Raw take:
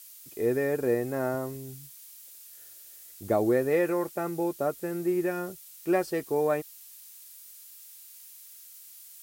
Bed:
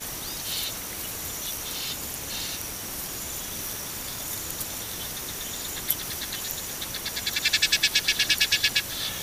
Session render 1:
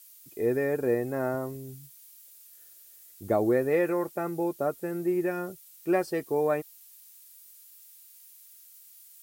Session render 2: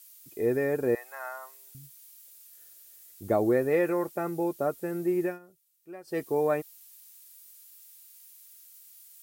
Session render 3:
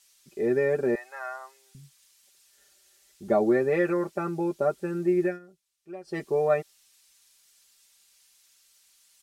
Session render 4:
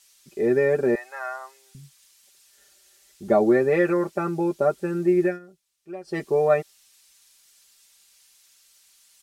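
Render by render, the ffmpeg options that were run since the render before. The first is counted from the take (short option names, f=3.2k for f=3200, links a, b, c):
-af "afftdn=nr=6:nf=-50"
-filter_complex "[0:a]asettb=1/sr,asplit=3[a][b][c];[a]atrim=end=0.954[d];[b]atrim=start=0.95:end=1.75,asetpts=PTS-STARTPTS,afade=t=in:d=0.004:c=qsin,afade=t=out:st=0.796:d=0.004:c=qsin,highpass=f=890:w=0.5412,highpass=f=890:w=1.3066[e];[c]atrim=start=1.746[f];[d][e]acrossfade=d=0.004:c1=hsin:c2=qsin[g];[g][f]acrossfade=d=0.004:c1=qsin:c2=hsin,asplit=3[h][i][j];[h]atrim=end=5.39,asetpts=PTS-STARTPTS,afade=t=out:st=5.25:d=0.14:silence=0.112202[k];[i]atrim=start=5.39:end=6.04,asetpts=PTS-STARTPTS,volume=-19dB[l];[j]atrim=start=6.04,asetpts=PTS-STARTPTS,afade=t=in:d=0.14:silence=0.112202[m];[k][l][m]concat=n=3:v=0:a=1"
-af "lowpass=6.4k,aecho=1:1:5.1:0.79"
-af "volume=4dB"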